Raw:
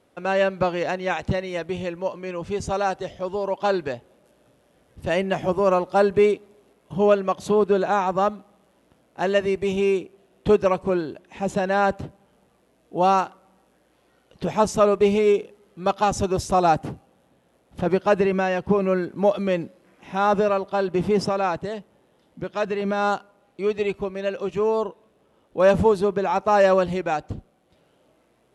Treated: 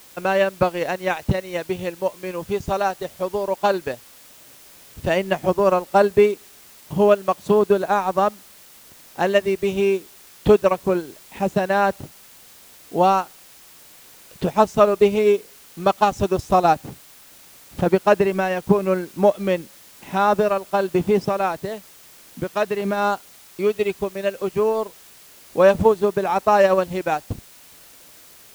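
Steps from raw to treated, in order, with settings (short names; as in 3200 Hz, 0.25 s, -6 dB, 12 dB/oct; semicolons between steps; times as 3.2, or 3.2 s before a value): transient shaper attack +4 dB, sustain -10 dB; requantised 8-bit, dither triangular; gain +1 dB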